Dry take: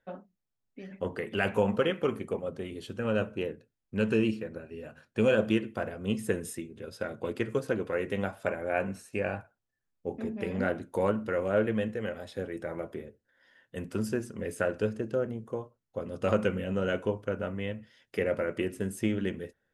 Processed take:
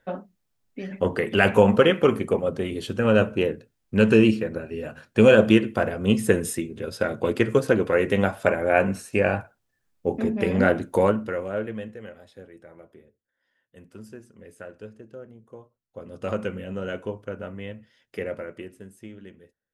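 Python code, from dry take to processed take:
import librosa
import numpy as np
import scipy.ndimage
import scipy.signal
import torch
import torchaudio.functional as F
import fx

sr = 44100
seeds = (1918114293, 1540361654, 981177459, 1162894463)

y = fx.gain(x, sr, db=fx.line((10.94, 10.0), (11.48, -1.5), (12.69, -11.5), (15.32, -11.5), (16.21, -1.5), (18.25, -1.5), (18.98, -13.0)))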